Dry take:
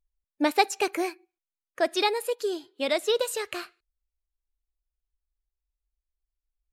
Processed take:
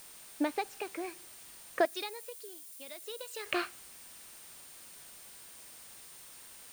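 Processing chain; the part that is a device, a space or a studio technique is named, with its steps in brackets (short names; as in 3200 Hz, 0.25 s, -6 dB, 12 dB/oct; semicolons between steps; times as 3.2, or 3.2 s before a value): medium wave at night (BPF 130–3600 Hz; compressor, threshold -28 dBFS, peak gain reduction 12 dB; tremolo 0.56 Hz, depth 74%; whine 9000 Hz -59 dBFS; white noise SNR 16 dB); 1.85–3.46 pre-emphasis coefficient 0.8; gain +4 dB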